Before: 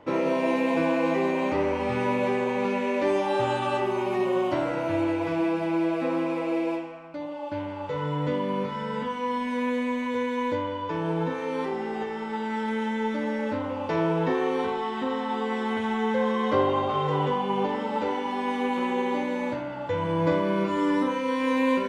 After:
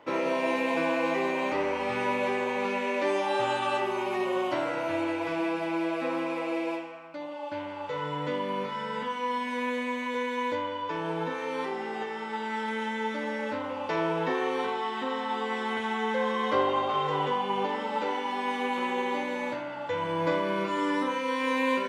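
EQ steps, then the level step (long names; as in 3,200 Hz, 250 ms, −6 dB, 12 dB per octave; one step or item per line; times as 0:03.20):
spectral tilt +3 dB per octave
low-shelf EQ 66 Hz −6.5 dB
high-shelf EQ 4,300 Hz −10 dB
0.0 dB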